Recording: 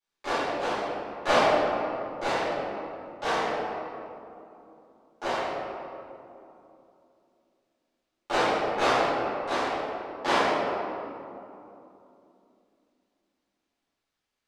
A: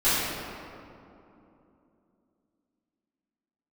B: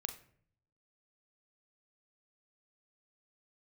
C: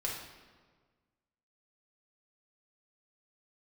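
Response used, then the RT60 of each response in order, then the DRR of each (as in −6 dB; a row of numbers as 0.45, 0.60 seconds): A; 2.9, 0.55, 1.6 seconds; −15.0, 7.0, −3.5 decibels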